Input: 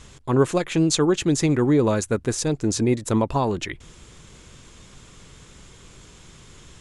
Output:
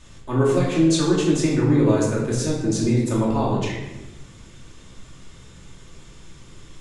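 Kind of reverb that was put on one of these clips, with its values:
rectangular room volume 490 cubic metres, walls mixed, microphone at 2.6 metres
level −7 dB

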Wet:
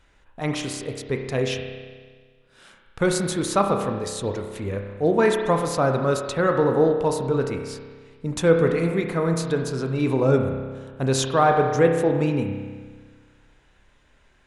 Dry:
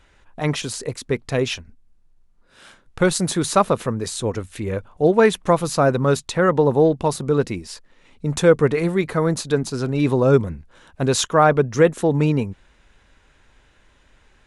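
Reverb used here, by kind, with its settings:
spring reverb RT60 1.6 s, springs 30 ms, chirp 75 ms, DRR 3.5 dB
level −4.5 dB

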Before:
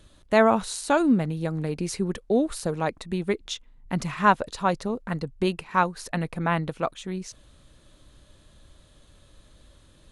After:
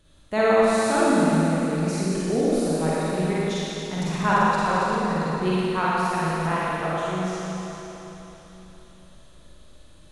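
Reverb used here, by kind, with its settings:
four-comb reverb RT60 3.7 s, DRR −9 dB
level −6.5 dB

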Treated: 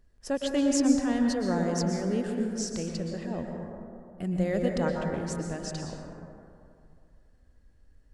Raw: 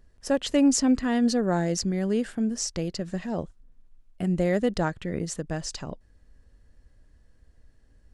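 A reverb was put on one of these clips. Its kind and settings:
dense smooth reverb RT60 2.5 s, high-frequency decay 0.3×, pre-delay 105 ms, DRR 1.5 dB
level −5.5 dB

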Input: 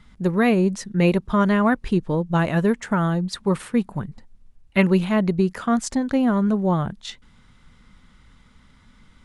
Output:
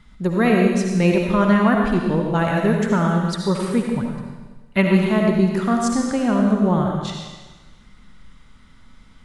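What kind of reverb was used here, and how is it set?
comb and all-pass reverb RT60 1.3 s, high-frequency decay 1×, pre-delay 35 ms, DRR 0.5 dB

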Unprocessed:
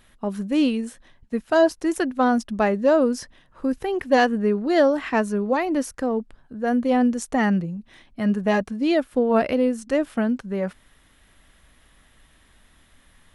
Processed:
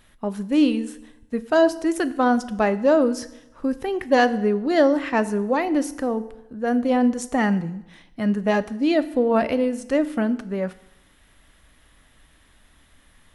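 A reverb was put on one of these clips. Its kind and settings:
feedback delay network reverb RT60 0.89 s, low-frequency decay 1×, high-frequency decay 0.9×, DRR 12.5 dB

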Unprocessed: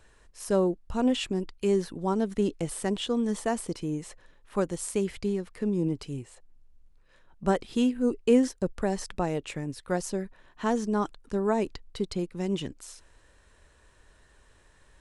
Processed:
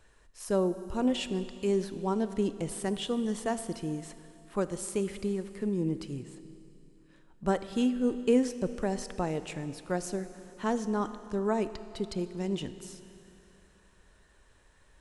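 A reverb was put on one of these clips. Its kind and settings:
four-comb reverb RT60 2.9 s, combs from 25 ms, DRR 12 dB
level −3 dB

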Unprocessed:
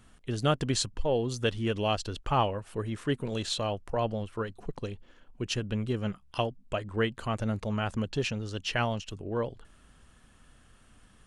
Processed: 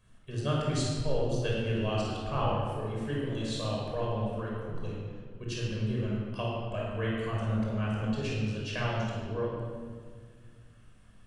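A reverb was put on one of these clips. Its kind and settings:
rectangular room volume 2,600 cubic metres, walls mixed, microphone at 5.5 metres
level −11.5 dB

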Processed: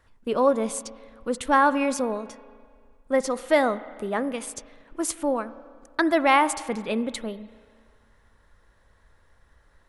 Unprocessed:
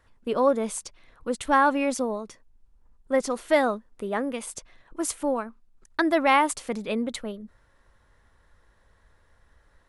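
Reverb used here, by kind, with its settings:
spring reverb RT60 1.9 s, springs 31/36 ms, chirp 75 ms, DRR 15 dB
level +1 dB

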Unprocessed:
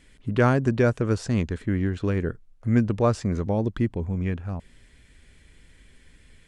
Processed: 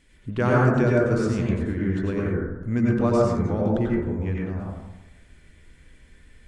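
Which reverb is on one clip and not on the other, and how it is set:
dense smooth reverb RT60 1 s, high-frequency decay 0.25×, pre-delay 80 ms, DRR −4.5 dB
level −4.5 dB

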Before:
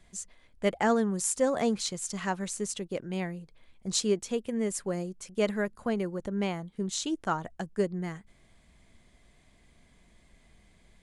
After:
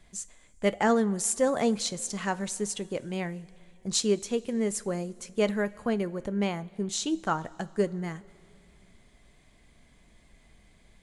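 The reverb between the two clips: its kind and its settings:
coupled-rooms reverb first 0.24 s, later 2.8 s, from −18 dB, DRR 13.5 dB
level +1.5 dB

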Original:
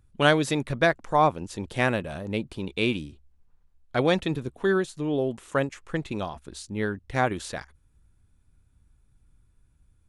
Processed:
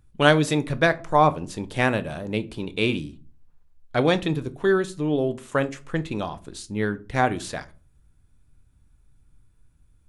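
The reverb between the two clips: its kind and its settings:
rectangular room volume 210 cubic metres, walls furnished, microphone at 0.41 metres
level +2 dB

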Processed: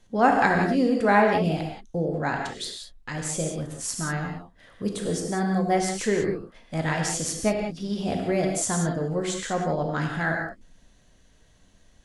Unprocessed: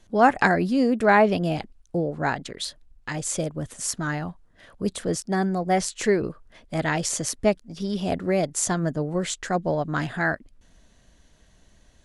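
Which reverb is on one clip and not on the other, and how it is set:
reverb whose tail is shaped and stops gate 210 ms flat, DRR 1 dB
level −3.5 dB

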